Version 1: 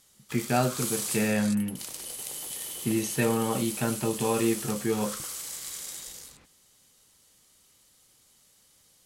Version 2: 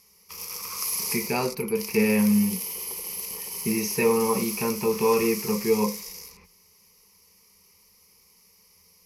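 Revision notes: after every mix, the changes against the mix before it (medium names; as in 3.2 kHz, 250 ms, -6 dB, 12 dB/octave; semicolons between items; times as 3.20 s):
speech: entry +0.80 s; master: add rippled EQ curve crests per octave 0.83, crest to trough 17 dB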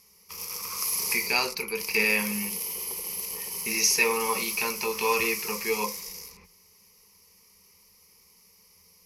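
speech: add frequency weighting ITU-R 468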